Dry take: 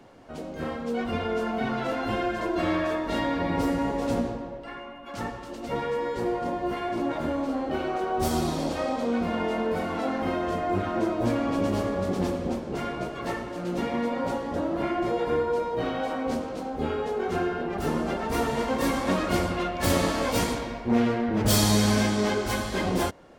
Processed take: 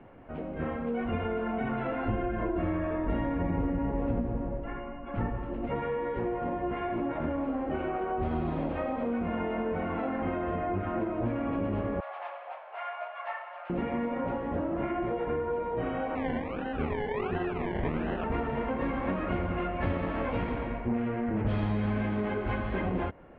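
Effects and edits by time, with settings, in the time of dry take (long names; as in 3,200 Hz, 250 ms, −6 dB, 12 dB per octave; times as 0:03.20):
0:02.08–0:05.67: spectral tilt −2 dB per octave
0:12.00–0:13.70: Chebyshev high-pass filter 640 Hz, order 5
0:16.15–0:18.24: sample-and-hold swept by an LFO 27×, swing 60% 1.4 Hz
whole clip: Butterworth low-pass 2,700 Hz 36 dB per octave; downward compressor, threshold −27 dBFS; low-shelf EQ 130 Hz +7.5 dB; level −1.5 dB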